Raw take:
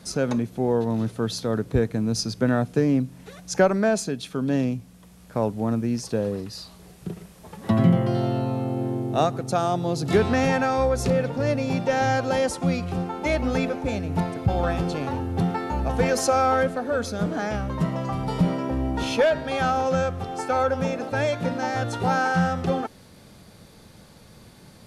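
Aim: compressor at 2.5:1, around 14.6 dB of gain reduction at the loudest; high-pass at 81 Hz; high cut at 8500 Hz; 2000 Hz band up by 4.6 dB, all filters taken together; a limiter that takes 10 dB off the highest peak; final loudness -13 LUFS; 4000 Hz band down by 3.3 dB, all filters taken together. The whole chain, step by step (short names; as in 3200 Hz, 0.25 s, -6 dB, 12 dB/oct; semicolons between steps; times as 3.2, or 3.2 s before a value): HPF 81 Hz; LPF 8500 Hz; bell 2000 Hz +7.5 dB; bell 4000 Hz -6.5 dB; compressor 2.5:1, threshold -36 dBFS; gain +24 dB; limiter -3 dBFS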